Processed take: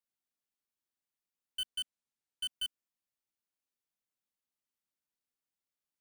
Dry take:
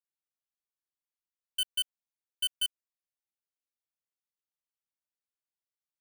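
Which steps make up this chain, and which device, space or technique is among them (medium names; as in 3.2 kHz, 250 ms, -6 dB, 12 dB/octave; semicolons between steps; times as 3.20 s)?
1.66–2.51 s: low-pass 11 kHz 24 dB/octave; peaking EQ 240 Hz +6.5 dB; saturation between pre-emphasis and de-emphasis (treble shelf 5 kHz +10 dB; saturation -29 dBFS, distortion -7 dB; treble shelf 5 kHz -10 dB)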